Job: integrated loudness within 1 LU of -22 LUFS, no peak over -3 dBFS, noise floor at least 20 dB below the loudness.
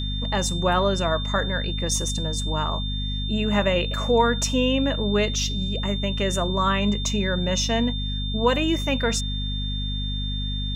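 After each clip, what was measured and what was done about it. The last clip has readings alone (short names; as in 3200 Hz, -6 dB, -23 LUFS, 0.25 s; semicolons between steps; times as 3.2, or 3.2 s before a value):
hum 50 Hz; harmonics up to 250 Hz; hum level -25 dBFS; steady tone 3600 Hz; tone level -31 dBFS; loudness -24.0 LUFS; peak -7.0 dBFS; loudness target -22.0 LUFS
-> de-hum 50 Hz, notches 5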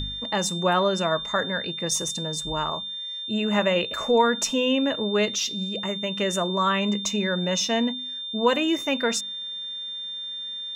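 hum none; steady tone 3600 Hz; tone level -31 dBFS
-> notch 3600 Hz, Q 30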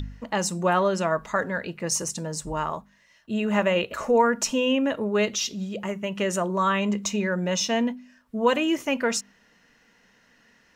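steady tone none; loudness -25.0 LUFS; peak -7.5 dBFS; loudness target -22.0 LUFS
-> gain +3 dB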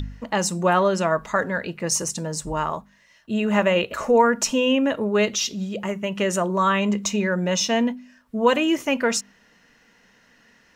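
loudness -22.0 LUFS; peak -4.5 dBFS; noise floor -58 dBFS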